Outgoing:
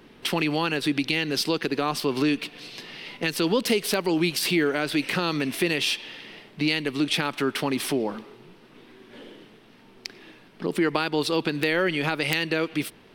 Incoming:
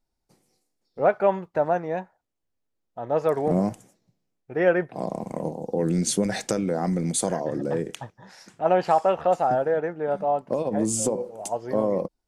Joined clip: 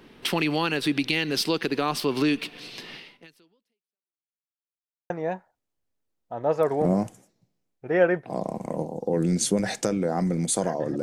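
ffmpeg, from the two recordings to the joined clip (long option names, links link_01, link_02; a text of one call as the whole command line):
ffmpeg -i cue0.wav -i cue1.wav -filter_complex "[0:a]apad=whole_dur=11.02,atrim=end=11.02,asplit=2[link_01][link_02];[link_01]atrim=end=4.26,asetpts=PTS-STARTPTS,afade=type=out:start_time=2.95:duration=1.31:curve=exp[link_03];[link_02]atrim=start=4.26:end=5.1,asetpts=PTS-STARTPTS,volume=0[link_04];[1:a]atrim=start=1.76:end=7.68,asetpts=PTS-STARTPTS,afade=type=in:duration=0.004:curve=hsin[link_05];[link_03][link_04][link_05]concat=n=3:v=0:a=1" out.wav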